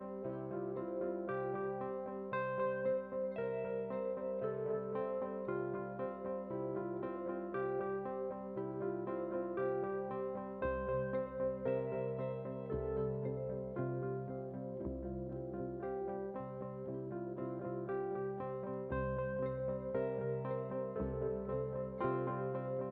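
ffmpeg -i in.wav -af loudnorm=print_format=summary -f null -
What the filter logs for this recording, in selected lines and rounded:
Input Integrated:    -40.3 LUFS
Input True Peak:     -25.8 dBTP
Input LRA:             2.9 LU
Input Threshold:     -50.3 LUFS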